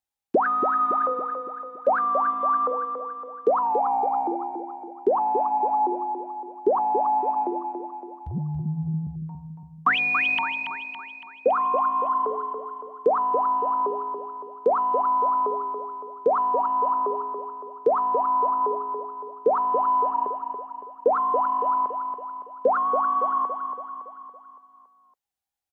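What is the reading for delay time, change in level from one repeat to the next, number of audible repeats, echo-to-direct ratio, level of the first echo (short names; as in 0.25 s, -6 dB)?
0.281 s, -5.5 dB, 5, -5.5 dB, -7.0 dB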